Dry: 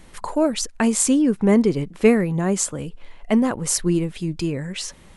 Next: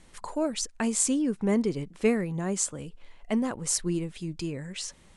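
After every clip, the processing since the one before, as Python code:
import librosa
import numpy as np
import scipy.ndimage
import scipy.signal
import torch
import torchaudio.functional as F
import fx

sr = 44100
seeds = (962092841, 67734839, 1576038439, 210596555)

y = scipy.signal.sosfilt(scipy.signal.butter(4, 9700.0, 'lowpass', fs=sr, output='sos'), x)
y = fx.high_shelf(y, sr, hz=4900.0, db=6.5)
y = y * 10.0 ** (-9.0 / 20.0)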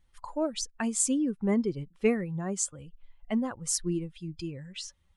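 y = fx.bin_expand(x, sr, power=1.5)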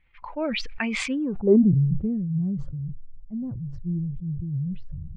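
y = fx.filter_sweep_lowpass(x, sr, from_hz=2300.0, to_hz=140.0, start_s=1.07, end_s=1.78, q=7.1)
y = fx.high_shelf_res(y, sr, hz=5500.0, db=-10.0, q=1.5)
y = fx.sustainer(y, sr, db_per_s=20.0)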